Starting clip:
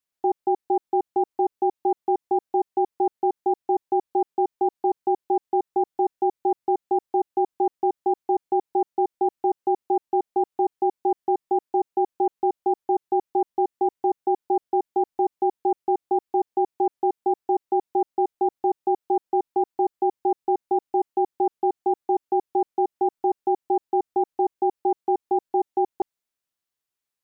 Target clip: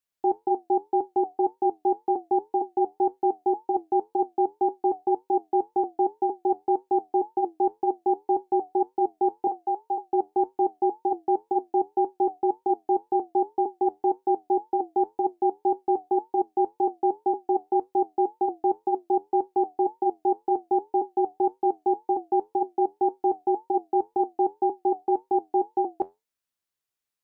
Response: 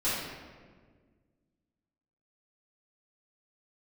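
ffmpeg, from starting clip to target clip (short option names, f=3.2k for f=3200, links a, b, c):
-filter_complex "[0:a]asettb=1/sr,asplit=3[a][b][c];[a]atrim=end=9.474[d];[b]atrim=start=9.47:end=10.03,asetpts=PTS-STARTPTS,afade=t=in:d=0.004:c=qsin,afade=t=out:st=0.556:d=0.004:c=qsin,highpass=600[e];[c]atrim=start=10.026[f];[d][e]acrossfade=d=0.004:c1=hsin:c2=qsin[g];[g][f]acrossfade=d=0.004:c1=qsin:c2=hsin,flanger=delay=9:depth=2.7:regen=-68:speed=1.9:shape=triangular,volume=3dB"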